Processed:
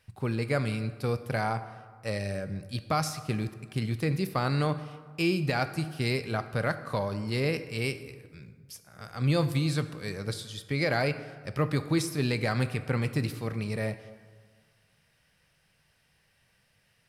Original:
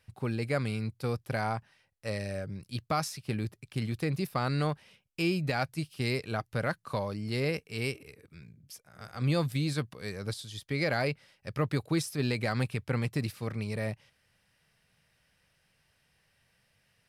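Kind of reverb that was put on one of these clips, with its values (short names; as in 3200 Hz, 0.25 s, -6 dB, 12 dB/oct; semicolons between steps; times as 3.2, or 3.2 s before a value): plate-style reverb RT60 1.6 s, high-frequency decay 0.55×, DRR 10.5 dB; gain +2 dB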